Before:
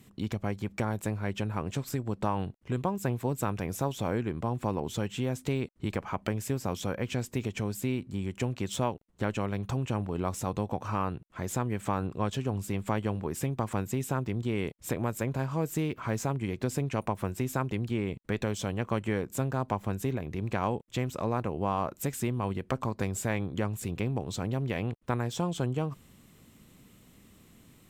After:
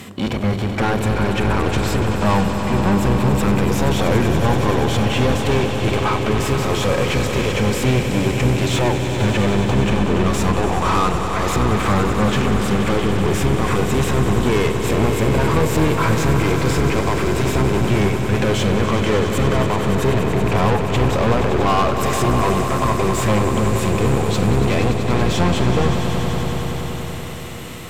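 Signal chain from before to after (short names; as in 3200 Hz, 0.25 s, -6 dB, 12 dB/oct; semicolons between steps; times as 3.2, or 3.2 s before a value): octaver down 1 oct, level +1 dB; harmonic-percussive split percussive -16 dB; overdrive pedal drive 31 dB, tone 3500 Hz, clips at -18 dBFS; swelling echo 95 ms, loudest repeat 5, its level -11 dB; gain +7.5 dB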